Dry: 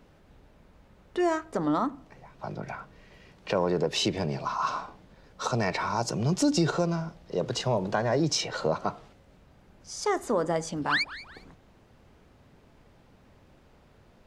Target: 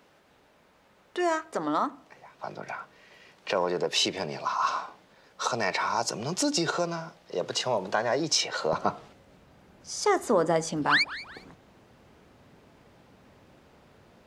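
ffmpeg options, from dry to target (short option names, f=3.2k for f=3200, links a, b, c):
-af "asetnsamples=n=441:p=0,asendcmd='8.73 highpass f 140',highpass=f=670:p=1,volume=3.5dB"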